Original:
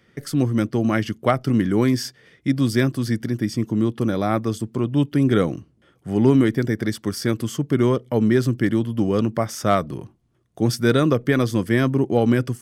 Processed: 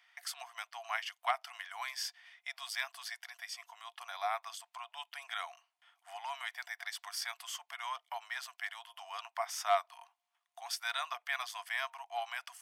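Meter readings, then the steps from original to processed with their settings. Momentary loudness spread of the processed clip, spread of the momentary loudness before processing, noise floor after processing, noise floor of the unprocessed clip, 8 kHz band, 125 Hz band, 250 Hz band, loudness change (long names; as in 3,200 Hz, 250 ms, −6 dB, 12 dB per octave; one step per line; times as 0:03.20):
10 LU, 7 LU, −84 dBFS, −60 dBFS, −9.0 dB, below −40 dB, below −40 dB, −18.5 dB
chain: in parallel at 0 dB: downward compressor, threshold −26 dBFS, peak gain reduction 15 dB
on the sum: Chebyshev high-pass with heavy ripple 680 Hz, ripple 6 dB
level −7.5 dB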